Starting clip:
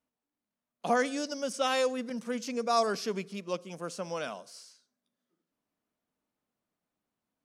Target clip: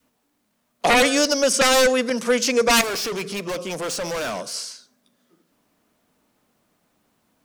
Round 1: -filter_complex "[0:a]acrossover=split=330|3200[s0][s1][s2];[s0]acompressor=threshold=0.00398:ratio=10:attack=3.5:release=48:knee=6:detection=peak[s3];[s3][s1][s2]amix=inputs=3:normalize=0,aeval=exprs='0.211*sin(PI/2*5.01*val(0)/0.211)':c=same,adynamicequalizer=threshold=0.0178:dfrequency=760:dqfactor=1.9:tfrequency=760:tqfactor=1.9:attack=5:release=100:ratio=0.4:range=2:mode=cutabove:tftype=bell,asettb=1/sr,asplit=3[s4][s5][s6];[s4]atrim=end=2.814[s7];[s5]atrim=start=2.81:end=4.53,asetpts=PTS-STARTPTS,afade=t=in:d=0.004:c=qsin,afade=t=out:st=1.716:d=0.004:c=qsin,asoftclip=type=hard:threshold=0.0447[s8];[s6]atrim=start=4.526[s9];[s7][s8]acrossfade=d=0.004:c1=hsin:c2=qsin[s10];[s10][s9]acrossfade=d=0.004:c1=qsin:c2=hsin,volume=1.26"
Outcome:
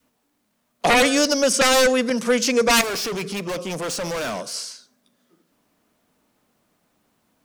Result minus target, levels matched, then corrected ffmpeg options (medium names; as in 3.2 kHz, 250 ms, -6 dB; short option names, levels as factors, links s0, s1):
compression: peak gain reduction -6.5 dB
-filter_complex "[0:a]acrossover=split=330|3200[s0][s1][s2];[s0]acompressor=threshold=0.00178:ratio=10:attack=3.5:release=48:knee=6:detection=peak[s3];[s3][s1][s2]amix=inputs=3:normalize=0,aeval=exprs='0.211*sin(PI/2*5.01*val(0)/0.211)':c=same,adynamicequalizer=threshold=0.0178:dfrequency=760:dqfactor=1.9:tfrequency=760:tqfactor=1.9:attack=5:release=100:ratio=0.4:range=2:mode=cutabove:tftype=bell,asettb=1/sr,asplit=3[s4][s5][s6];[s4]atrim=end=2.814[s7];[s5]atrim=start=2.81:end=4.53,asetpts=PTS-STARTPTS,afade=t=in:d=0.004:c=qsin,afade=t=out:st=1.716:d=0.004:c=qsin,asoftclip=type=hard:threshold=0.0447[s8];[s6]atrim=start=4.526[s9];[s7][s8]acrossfade=d=0.004:c1=hsin:c2=qsin[s10];[s10][s9]acrossfade=d=0.004:c1=qsin:c2=hsin,volume=1.26"